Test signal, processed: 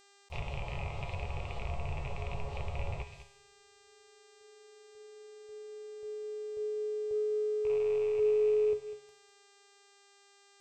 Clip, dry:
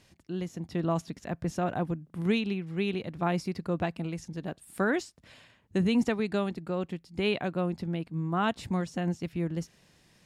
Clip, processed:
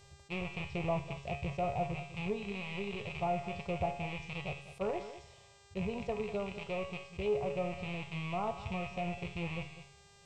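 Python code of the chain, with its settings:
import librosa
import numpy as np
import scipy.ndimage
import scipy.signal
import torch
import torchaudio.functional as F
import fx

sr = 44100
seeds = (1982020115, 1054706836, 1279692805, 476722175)

p1 = fx.rattle_buzz(x, sr, strikes_db=-41.0, level_db=-19.0)
p2 = fx.peak_eq(p1, sr, hz=76.0, db=11.0, octaves=0.95)
p3 = fx.comb_fb(p2, sr, f0_hz=140.0, decay_s=0.52, harmonics='all', damping=0.0, mix_pct=80)
p4 = fx.rev_double_slope(p3, sr, seeds[0], early_s=0.41, late_s=2.2, knee_db=-19, drr_db=18.0)
p5 = np.clip(p4, -10.0 ** (-38.0 / 20.0), 10.0 ** (-38.0 / 20.0))
p6 = p4 + F.gain(torch.from_numpy(p5), -8.0).numpy()
p7 = fx.rider(p6, sr, range_db=5, speed_s=2.0)
p8 = fx.fixed_phaser(p7, sr, hz=660.0, stages=4)
p9 = p8 + 10.0 ** (-14.5 / 20.0) * np.pad(p8, (int(200 * sr / 1000.0), 0))[:len(p8)]
p10 = fx.env_lowpass_down(p9, sr, base_hz=1800.0, full_db=-36.0)
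p11 = fx.lowpass(p10, sr, hz=2300.0, slope=6)
p12 = fx.dmg_buzz(p11, sr, base_hz=400.0, harmonics=21, level_db=-69.0, tilt_db=-2, odd_only=False)
p13 = fx.attack_slew(p12, sr, db_per_s=560.0)
y = F.gain(torch.from_numpy(p13), 6.0).numpy()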